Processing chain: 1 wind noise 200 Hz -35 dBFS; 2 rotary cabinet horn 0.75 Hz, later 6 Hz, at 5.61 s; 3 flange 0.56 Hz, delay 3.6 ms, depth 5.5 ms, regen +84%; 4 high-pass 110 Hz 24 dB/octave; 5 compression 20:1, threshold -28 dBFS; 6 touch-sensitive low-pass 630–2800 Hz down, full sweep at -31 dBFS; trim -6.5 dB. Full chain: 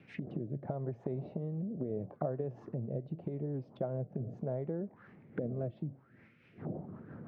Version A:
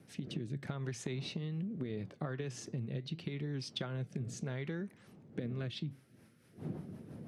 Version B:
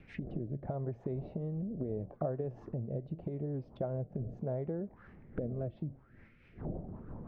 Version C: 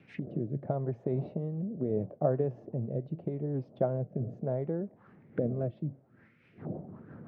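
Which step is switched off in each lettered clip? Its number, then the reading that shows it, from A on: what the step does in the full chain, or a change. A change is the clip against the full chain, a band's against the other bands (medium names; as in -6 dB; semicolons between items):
6, 2 kHz band +11.0 dB; 4, crest factor change -1.5 dB; 5, mean gain reduction 2.5 dB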